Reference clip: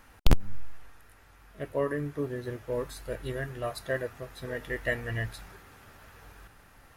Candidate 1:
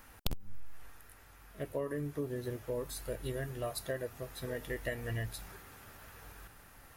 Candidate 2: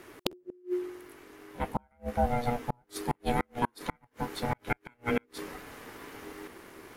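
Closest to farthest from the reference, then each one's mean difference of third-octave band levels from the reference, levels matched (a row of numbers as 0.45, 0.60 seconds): 1, 2; 4.5, 11.0 decibels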